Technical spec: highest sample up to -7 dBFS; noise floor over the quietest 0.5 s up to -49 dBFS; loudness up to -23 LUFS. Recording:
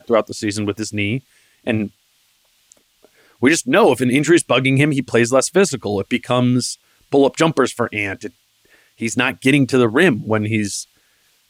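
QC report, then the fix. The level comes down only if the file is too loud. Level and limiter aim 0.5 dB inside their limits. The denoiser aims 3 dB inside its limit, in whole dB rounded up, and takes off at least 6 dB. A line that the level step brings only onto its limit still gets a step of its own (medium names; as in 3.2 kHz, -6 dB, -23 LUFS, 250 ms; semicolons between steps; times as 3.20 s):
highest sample -3.0 dBFS: fail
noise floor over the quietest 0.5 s -60 dBFS: pass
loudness -17.5 LUFS: fail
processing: trim -6 dB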